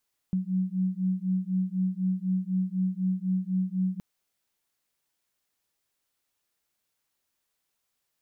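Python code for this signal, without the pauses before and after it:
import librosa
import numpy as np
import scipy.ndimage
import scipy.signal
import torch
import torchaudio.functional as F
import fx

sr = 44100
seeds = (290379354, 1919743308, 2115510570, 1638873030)

y = fx.two_tone_beats(sr, length_s=3.67, hz=184.0, beat_hz=4.0, level_db=-28.0)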